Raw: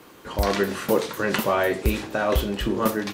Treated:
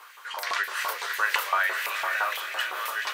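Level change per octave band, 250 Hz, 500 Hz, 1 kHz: below −30 dB, −17.0 dB, −0.5 dB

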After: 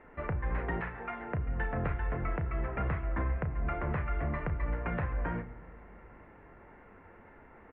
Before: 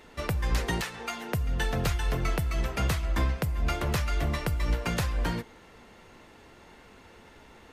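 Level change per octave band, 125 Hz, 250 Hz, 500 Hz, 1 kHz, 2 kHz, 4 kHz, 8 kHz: −4.5 dB, −4.5 dB, −3.5 dB, −3.0 dB, −5.0 dB, below −20 dB, below −40 dB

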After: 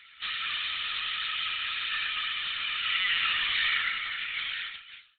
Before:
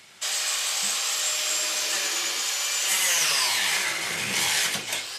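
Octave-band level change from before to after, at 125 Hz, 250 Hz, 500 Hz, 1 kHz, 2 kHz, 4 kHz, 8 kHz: below −10 dB, below −15 dB, below −20 dB, −5.0 dB, −1.5 dB, −3.5 dB, below −40 dB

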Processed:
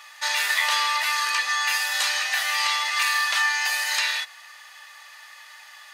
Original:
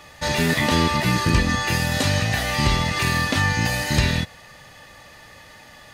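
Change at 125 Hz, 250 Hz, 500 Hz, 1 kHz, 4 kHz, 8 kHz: below −40 dB, below −40 dB, −17.5 dB, −1.0 dB, +1.5 dB, +1.5 dB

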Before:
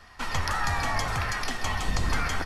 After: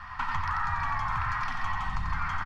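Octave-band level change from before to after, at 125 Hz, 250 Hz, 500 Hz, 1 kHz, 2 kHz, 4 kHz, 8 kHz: −4.5 dB, −9.0 dB, −15.5 dB, +1.0 dB, −3.0 dB, −12.0 dB, below −15 dB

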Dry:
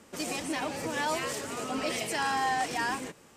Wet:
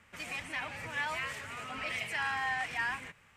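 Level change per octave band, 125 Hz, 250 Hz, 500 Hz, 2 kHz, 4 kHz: −4.5, −15.5, −13.0, +0.5, −5.5 decibels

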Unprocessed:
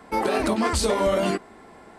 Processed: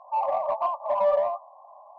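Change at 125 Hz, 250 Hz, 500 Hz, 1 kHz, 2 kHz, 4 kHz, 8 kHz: below −25 dB, below −30 dB, −1.5 dB, +1.0 dB, −17.5 dB, below −20 dB, below −40 dB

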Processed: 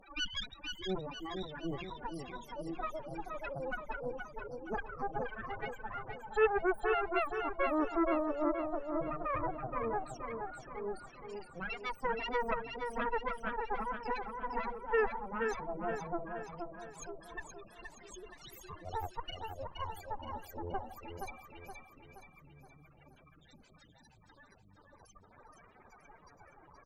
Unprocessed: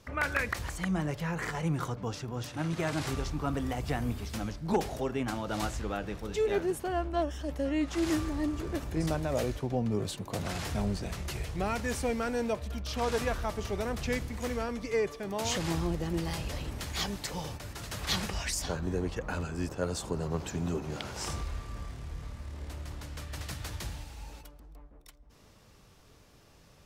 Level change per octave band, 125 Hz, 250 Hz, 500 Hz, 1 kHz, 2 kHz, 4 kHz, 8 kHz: −16.0, −8.0, −3.0, +0.5, −3.0, −7.0, −16.5 decibels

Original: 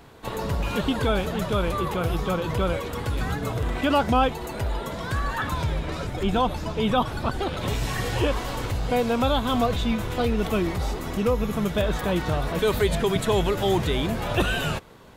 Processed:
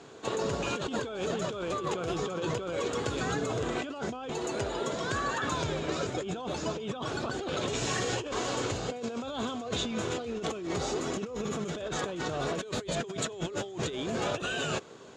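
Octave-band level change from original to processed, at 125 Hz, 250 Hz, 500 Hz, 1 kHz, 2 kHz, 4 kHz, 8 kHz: −11.0, −8.5, −6.5, −8.5, −5.5, −5.0, +1.5 decibels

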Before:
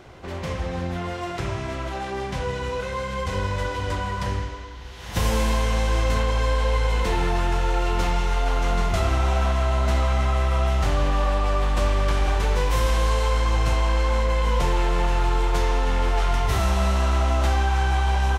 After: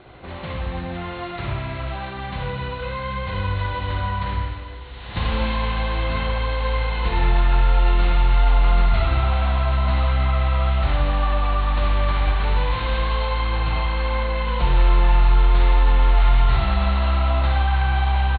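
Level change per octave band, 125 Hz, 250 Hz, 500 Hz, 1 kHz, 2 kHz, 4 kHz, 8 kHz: +2.5 dB, −0.5 dB, −2.5 dB, +1.0 dB, +1.5 dB, +1.0 dB, below −40 dB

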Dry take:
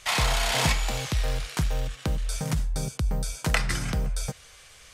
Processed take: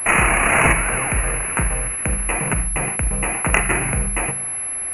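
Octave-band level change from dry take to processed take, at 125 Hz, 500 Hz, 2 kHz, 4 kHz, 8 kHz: +4.0, +9.0, +12.5, −5.5, +13.5 decibels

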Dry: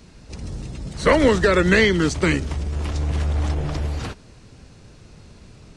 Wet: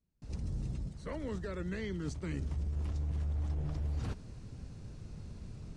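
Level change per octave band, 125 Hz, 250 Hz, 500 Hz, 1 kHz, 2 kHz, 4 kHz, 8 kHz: −11.5, −18.5, −24.0, −25.0, −27.5, −26.0, −21.5 decibels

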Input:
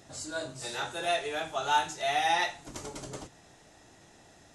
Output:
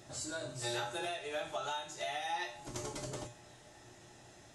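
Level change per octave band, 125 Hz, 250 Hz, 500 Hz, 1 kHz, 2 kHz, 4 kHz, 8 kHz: 0.0, −3.0, −6.0, −10.5, −9.0, −7.0, −3.5 decibels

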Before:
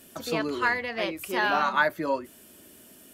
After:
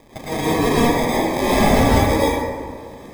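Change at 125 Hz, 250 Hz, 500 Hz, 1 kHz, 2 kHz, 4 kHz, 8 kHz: +23.0, +15.5, +11.5, +7.5, +1.5, +9.0, +15.5 decibels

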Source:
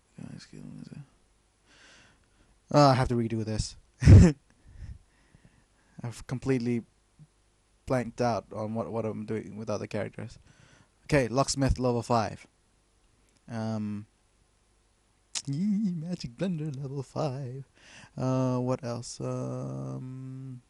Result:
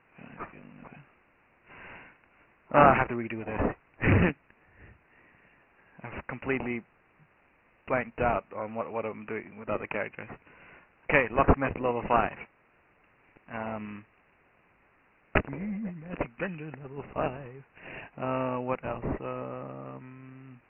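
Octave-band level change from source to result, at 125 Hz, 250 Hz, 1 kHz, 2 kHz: −8.5, −4.0, +4.0, +8.5 decibels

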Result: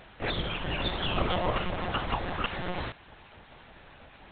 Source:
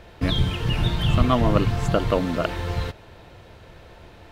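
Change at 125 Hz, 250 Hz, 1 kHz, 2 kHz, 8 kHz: −14.0 dB, −12.0 dB, −4.0 dB, −1.5 dB, below −35 dB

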